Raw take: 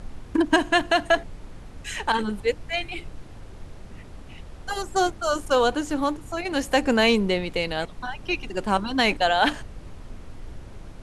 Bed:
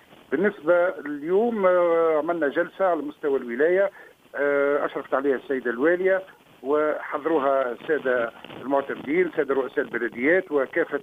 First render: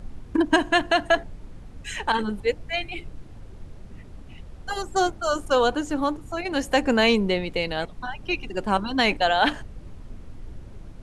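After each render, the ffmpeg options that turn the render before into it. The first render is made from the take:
ffmpeg -i in.wav -af "afftdn=noise_reduction=6:noise_floor=-42" out.wav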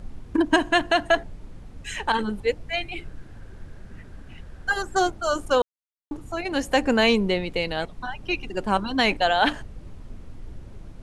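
ffmpeg -i in.wav -filter_complex "[0:a]asettb=1/sr,asplit=3[link_01][link_02][link_03];[link_01]atrim=end=2.994[link_04];[link_02]atrim=start=2.99:end=4.99,asetpts=PTS-STARTPTS,afade=type=in:duration=0.004:curve=qsin,afade=type=out:start_time=1.996:duration=0.004:curve=qsin,equalizer=frequency=1600:width=4.3:gain=11.5[link_05];[link_03]atrim=start=4.986[link_06];[link_04][link_05]acrossfade=duration=0.004:curve1=hsin:curve2=qsin[link_07];[link_07][link_06]acrossfade=duration=0.004:curve1=qsin:curve2=hsin,asplit=3[link_08][link_09][link_10];[link_08]atrim=end=5.62,asetpts=PTS-STARTPTS,afade=type=out:start_time=5.616:duration=0.004:curve=hsin[link_11];[link_09]atrim=start=5.62:end=6.11,asetpts=PTS-STARTPTS,volume=0[link_12];[link_10]atrim=start=6.11,asetpts=PTS-STARTPTS,afade=type=in:duration=0.004:curve=hsin[link_13];[link_11][link_12][link_13]concat=n=3:v=0:a=1" out.wav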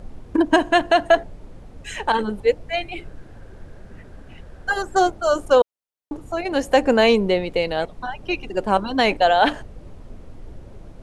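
ffmpeg -i in.wav -af "equalizer=frequency=560:width=0.98:gain=7" out.wav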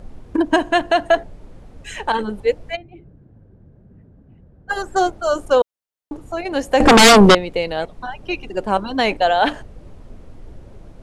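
ffmpeg -i in.wav -filter_complex "[0:a]asplit=3[link_01][link_02][link_03];[link_01]afade=type=out:start_time=2.75:duration=0.02[link_04];[link_02]bandpass=frequency=150:width_type=q:width=1,afade=type=in:start_time=2.75:duration=0.02,afade=type=out:start_time=4.69:duration=0.02[link_05];[link_03]afade=type=in:start_time=4.69:duration=0.02[link_06];[link_04][link_05][link_06]amix=inputs=3:normalize=0,asettb=1/sr,asplit=3[link_07][link_08][link_09];[link_07]atrim=end=6.804[link_10];[link_08]atrim=start=6.8:end=7.35,asetpts=PTS-STARTPTS,afade=type=in:duration=0.004:curve=qsin,afade=type=out:start_time=0.546:duration=0.004:curve=qsin,aeval=exprs='0.596*sin(PI/2*4.47*val(0)/0.596)':channel_layout=same[link_11];[link_09]atrim=start=7.346[link_12];[link_10][link_11]acrossfade=duration=0.004:curve1=hsin:curve2=qsin[link_13];[link_13][link_12]acrossfade=duration=0.004:curve1=qsin:curve2=hsin" out.wav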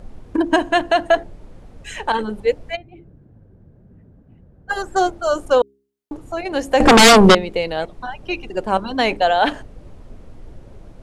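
ffmpeg -i in.wav -af "bandreject=frequency=68.08:width_type=h:width=4,bandreject=frequency=136.16:width_type=h:width=4,bandreject=frequency=204.24:width_type=h:width=4,bandreject=frequency=272.32:width_type=h:width=4,bandreject=frequency=340.4:width_type=h:width=4,bandreject=frequency=408.48:width_type=h:width=4" out.wav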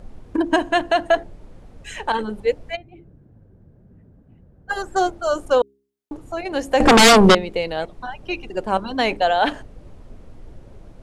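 ffmpeg -i in.wav -af "volume=-2dB" out.wav

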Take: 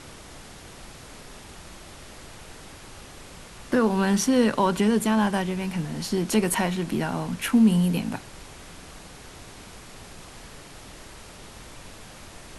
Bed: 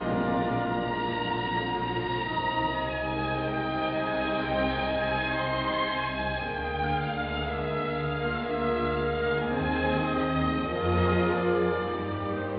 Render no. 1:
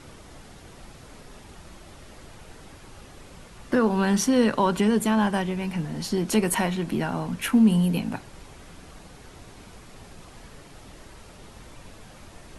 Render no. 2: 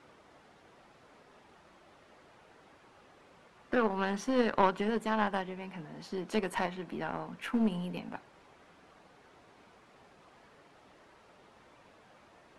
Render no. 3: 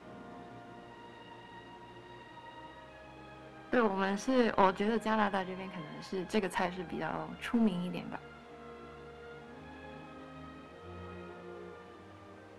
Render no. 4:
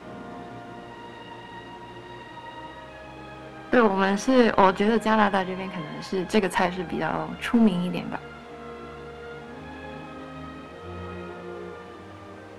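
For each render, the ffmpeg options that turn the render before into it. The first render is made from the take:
ffmpeg -i in.wav -af "afftdn=noise_reduction=6:noise_floor=-45" out.wav
ffmpeg -i in.wav -af "bandpass=frequency=950:width_type=q:width=0.5:csg=0,aeval=exprs='0.299*(cos(1*acos(clip(val(0)/0.299,-1,1)))-cos(1*PI/2))+0.0473*(cos(3*acos(clip(val(0)/0.299,-1,1)))-cos(3*PI/2))+0.0106*(cos(4*acos(clip(val(0)/0.299,-1,1)))-cos(4*PI/2))+0.00531*(cos(7*acos(clip(val(0)/0.299,-1,1)))-cos(7*PI/2))':channel_layout=same" out.wav
ffmpeg -i in.wav -i bed.wav -filter_complex "[1:a]volume=-22.5dB[link_01];[0:a][link_01]amix=inputs=2:normalize=0" out.wav
ffmpeg -i in.wav -af "volume=10dB,alimiter=limit=-3dB:level=0:latency=1" out.wav

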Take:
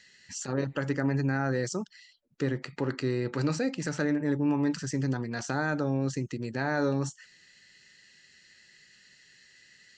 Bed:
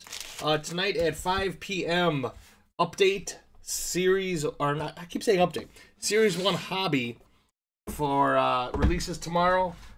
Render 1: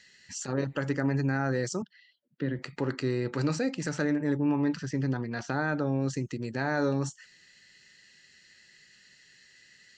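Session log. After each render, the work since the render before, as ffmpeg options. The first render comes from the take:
ffmpeg -i in.wav -filter_complex "[0:a]asettb=1/sr,asplit=3[link_01][link_02][link_03];[link_01]atrim=end=1.824[link_04];[link_02]atrim=start=1.82:end=2.59,asetpts=PTS-STARTPTS,afade=type=in:duration=0.004:curve=qsin,afade=type=out:start_time=0.766:duration=0.004:curve=qsin,highpass=frequency=120:width=0.5412,highpass=frequency=120:width=1.3066,equalizer=frequency=420:width_type=q:width=4:gain=-6,equalizer=frequency=810:width_type=q:width=4:gain=-10,equalizer=frequency=1200:width_type=q:width=4:gain=-9,equalizer=frequency=2400:width_type=q:width=4:gain=-8,lowpass=frequency=3400:width=0.5412,lowpass=frequency=3400:width=1.3066[link_05];[link_03]atrim=start=2.586[link_06];[link_04][link_05]acrossfade=duration=0.004:curve1=hsin:curve2=qsin[link_07];[link_07][link_06]acrossfade=duration=0.004:curve1=qsin:curve2=hsin,asettb=1/sr,asplit=3[link_08][link_09][link_10];[link_08]atrim=end=4.374[link_11];[link_09]atrim=start=4.37:end=5.99,asetpts=PTS-STARTPTS,afade=type=in:duration=0.004:curve=qsin,afade=type=out:start_time=1.616:duration=0.004:curve=qsin,lowpass=4200[link_12];[link_10]atrim=start=5.986[link_13];[link_11][link_12]acrossfade=duration=0.004:curve1=hsin:curve2=qsin[link_14];[link_14][link_13]acrossfade=duration=0.004:curve1=qsin:curve2=hsin" out.wav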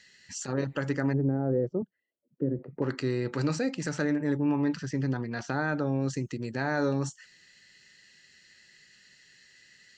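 ffmpeg -i in.wav -filter_complex "[0:a]asettb=1/sr,asplit=3[link_01][link_02][link_03];[link_01]atrim=end=1.134[link_04];[link_02]atrim=start=1.13:end=2.82,asetpts=PTS-STARTPTS,afade=type=in:duration=0.004:curve=qsin,afade=type=out:start_time=1.686:duration=0.004:curve=qsin,lowpass=frequency=490:width_type=q:width=1.6[link_05];[link_03]atrim=start=2.816[link_06];[link_04][link_05]acrossfade=duration=0.004:curve1=hsin:curve2=qsin[link_07];[link_07][link_06]acrossfade=duration=0.004:curve1=qsin:curve2=hsin" out.wav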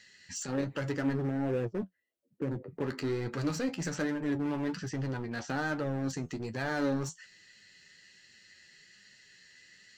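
ffmpeg -i in.wav -filter_complex "[0:a]asplit=2[link_01][link_02];[link_02]aeval=exprs='0.0251*(abs(mod(val(0)/0.0251+3,4)-2)-1)':channel_layout=same,volume=-5.5dB[link_03];[link_01][link_03]amix=inputs=2:normalize=0,flanger=delay=8.6:depth=4:regen=46:speed=1.2:shape=triangular" out.wav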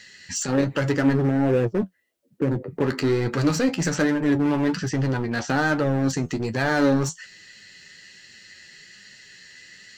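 ffmpeg -i in.wav -af "volume=11dB" out.wav

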